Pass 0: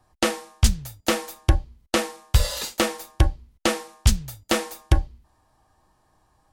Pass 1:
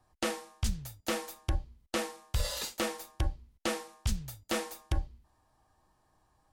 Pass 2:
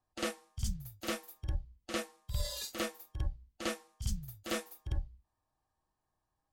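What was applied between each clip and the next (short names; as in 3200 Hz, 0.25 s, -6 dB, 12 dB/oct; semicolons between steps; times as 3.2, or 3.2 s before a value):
limiter -14 dBFS, peak gain reduction 9.5 dB; gain -6.5 dB
spectral noise reduction 12 dB; reverse echo 51 ms -8.5 dB; gain -3 dB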